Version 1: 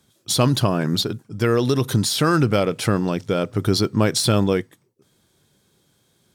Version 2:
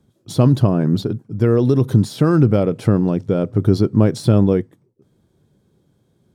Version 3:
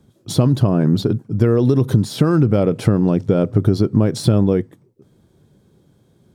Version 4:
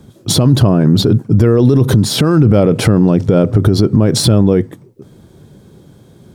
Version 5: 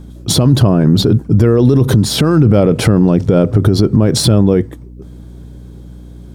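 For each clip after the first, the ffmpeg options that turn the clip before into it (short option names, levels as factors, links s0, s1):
-af "tiltshelf=f=970:g=9.5,volume=0.708"
-af "acompressor=threshold=0.158:ratio=6,volume=1.88"
-af "alimiter=level_in=5.01:limit=0.891:release=50:level=0:latency=1,volume=0.891"
-af "aeval=exprs='val(0)+0.0251*(sin(2*PI*60*n/s)+sin(2*PI*2*60*n/s)/2+sin(2*PI*3*60*n/s)/3+sin(2*PI*4*60*n/s)/4+sin(2*PI*5*60*n/s)/5)':c=same"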